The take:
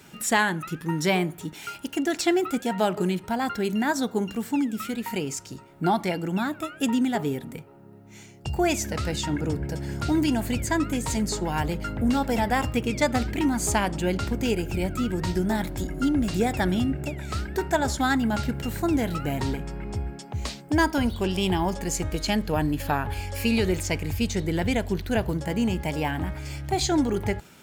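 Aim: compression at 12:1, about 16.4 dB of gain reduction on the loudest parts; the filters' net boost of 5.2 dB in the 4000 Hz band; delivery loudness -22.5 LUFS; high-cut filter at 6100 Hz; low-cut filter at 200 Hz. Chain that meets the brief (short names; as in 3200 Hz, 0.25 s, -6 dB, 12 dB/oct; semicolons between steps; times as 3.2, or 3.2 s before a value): HPF 200 Hz; LPF 6100 Hz; bell 4000 Hz +7.5 dB; compressor 12:1, threshold -34 dBFS; gain +15.5 dB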